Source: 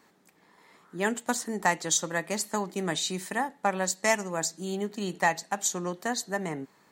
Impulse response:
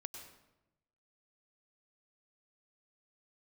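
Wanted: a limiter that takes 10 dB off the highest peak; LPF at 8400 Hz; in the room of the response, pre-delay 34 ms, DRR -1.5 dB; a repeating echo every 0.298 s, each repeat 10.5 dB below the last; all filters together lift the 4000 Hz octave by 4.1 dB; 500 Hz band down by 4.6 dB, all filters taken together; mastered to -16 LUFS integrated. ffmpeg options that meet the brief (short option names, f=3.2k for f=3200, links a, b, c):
-filter_complex "[0:a]lowpass=8.4k,equalizer=f=500:t=o:g=-6.5,equalizer=f=4k:t=o:g=5,alimiter=limit=-19.5dB:level=0:latency=1,aecho=1:1:298|596|894:0.299|0.0896|0.0269,asplit=2[a][b];[1:a]atrim=start_sample=2205,adelay=34[c];[b][c]afir=irnorm=-1:irlink=0,volume=5dB[d];[a][d]amix=inputs=2:normalize=0,volume=12.5dB"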